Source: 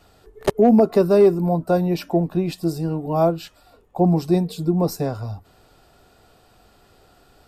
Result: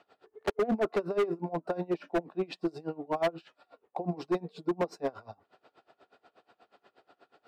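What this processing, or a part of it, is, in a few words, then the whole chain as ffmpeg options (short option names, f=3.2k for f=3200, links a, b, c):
helicopter radio: -af "highpass=350,lowpass=2.9k,aeval=exprs='val(0)*pow(10,-25*(0.5-0.5*cos(2*PI*8.3*n/s))/20)':c=same,asoftclip=type=hard:threshold=-23dB"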